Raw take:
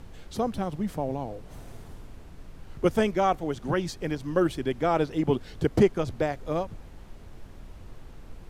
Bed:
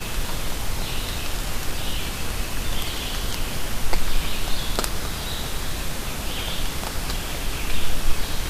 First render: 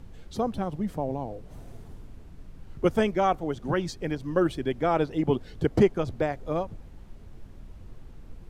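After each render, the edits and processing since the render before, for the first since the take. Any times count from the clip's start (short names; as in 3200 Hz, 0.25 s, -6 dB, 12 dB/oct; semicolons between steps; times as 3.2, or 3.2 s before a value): denoiser 6 dB, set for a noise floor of -46 dBFS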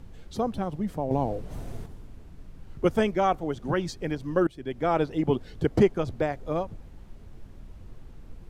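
1.11–1.86 gain +7 dB; 4.47–4.9 fade in, from -19 dB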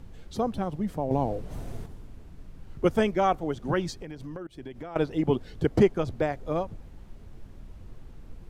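3.93–4.96 compressor 16:1, threshold -34 dBFS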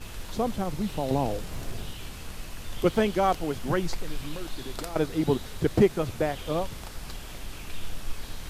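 add bed -13 dB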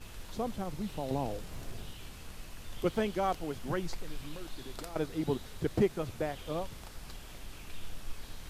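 gain -7.5 dB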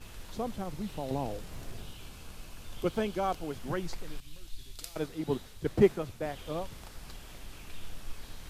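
1.82–3.5 notch 1900 Hz, Q 9.4; 4.2–6.26 three-band expander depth 100%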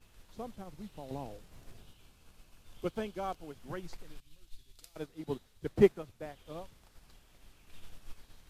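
upward expander 1.5:1, over -47 dBFS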